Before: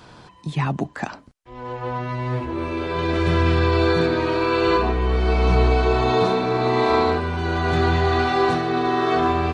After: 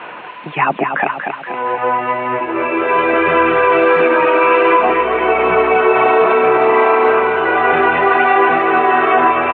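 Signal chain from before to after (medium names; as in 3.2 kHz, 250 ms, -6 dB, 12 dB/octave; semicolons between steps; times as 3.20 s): tracing distortion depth 0.063 ms; reverb removal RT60 0.87 s; added noise violet -33 dBFS; elliptic low-pass 2.7 kHz, stop band 50 dB; in parallel at +1 dB: compression 5:1, threshold -36 dBFS, peak gain reduction 17.5 dB; on the sum: high-pass 470 Hz 12 dB/octave; on a send: feedback delay 237 ms, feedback 54%, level -6.5 dB; on the sum: loudness maximiser +14 dB; trim -1.5 dB; WMA 64 kbps 22.05 kHz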